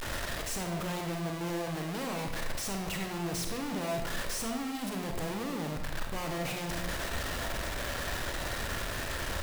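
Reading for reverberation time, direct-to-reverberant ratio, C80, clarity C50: 0.95 s, 2.5 dB, 7.0 dB, 3.5 dB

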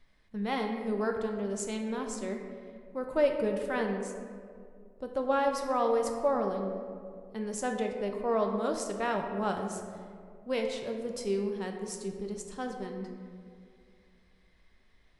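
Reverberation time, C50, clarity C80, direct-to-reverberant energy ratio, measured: 2.3 s, 5.0 dB, 6.0 dB, 2.5 dB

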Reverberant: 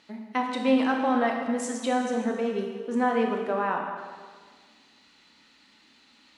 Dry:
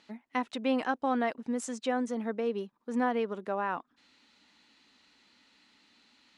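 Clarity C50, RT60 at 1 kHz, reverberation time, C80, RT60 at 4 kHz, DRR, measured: 3.5 dB, 1.6 s, 1.6 s, 5.0 dB, 1.5 s, 1.0 dB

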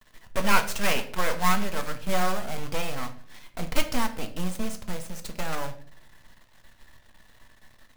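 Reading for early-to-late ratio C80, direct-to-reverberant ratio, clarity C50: 16.5 dB, 6.0 dB, 12.5 dB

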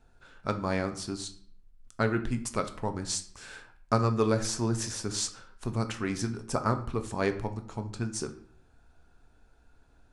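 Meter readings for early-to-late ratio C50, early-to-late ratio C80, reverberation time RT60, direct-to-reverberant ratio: 13.0 dB, 16.5 dB, 0.55 s, 7.0 dB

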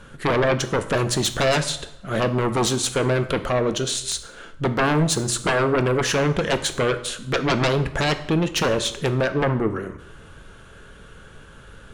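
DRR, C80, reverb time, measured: 9.0 dB, 16.0 dB, 0.85 s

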